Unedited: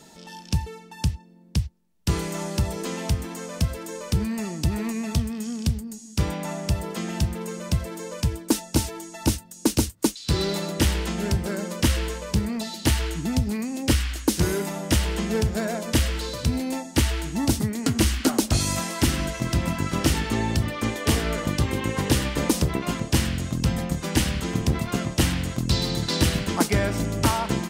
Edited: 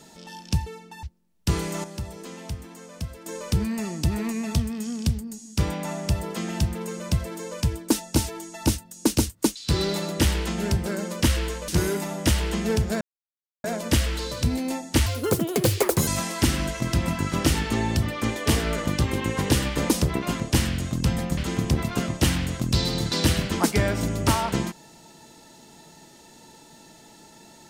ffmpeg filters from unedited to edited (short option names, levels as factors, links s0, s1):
-filter_complex "[0:a]asplit=9[s0][s1][s2][s3][s4][s5][s6][s7][s8];[s0]atrim=end=1.032[s9];[s1]atrim=start=1.628:end=2.442[s10];[s2]atrim=start=2.438:end=3.862,asetpts=PTS-STARTPTS,volume=0.355[s11];[s3]atrim=start=3.858:end=12.282[s12];[s4]atrim=start=14.328:end=15.66,asetpts=PTS-STARTPTS,afade=t=out:st=1.328:d=0.004:c=hsin,apad=pad_dur=0.63[s13];[s5]atrim=start=15.66:end=17.084,asetpts=PTS-STARTPTS,afade=t=in:d=0.004:c=hsin[s14];[s6]atrim=start=17.08:end=18.67,asetpts=PTS-STARTPTS,asetrate=69237,aresample=44100[s15];[s7]atrim=start=18.666:end=23.972[s16];[s8]atrim=start=24.338[s17];[s9][s10]acrossfade=d=0.004:c1=hsin:c2=hsin[s18];[s18][s11]acrossfade=d=0.004:c1=hsin:c2=hsin[s19];[s19][s12]acrossfade=d=0.004:c1=hsin:c2=hsin[s20];[s13][s14]concat=n=2:v=0:a=1[s21];[s20][s21]acrossfade=d=0.004:c1=hsin:c2=hsin[s22];[s22][s15]acrossfade=d=0.004:c1=hsin:c2=hsin[s23];[s23][s16]acrossfade=d=0.004:c1=hsin:c2=hsin[s24];[s24][s17]acrossfade=d=0.004:c1=hsin:c2=hsin"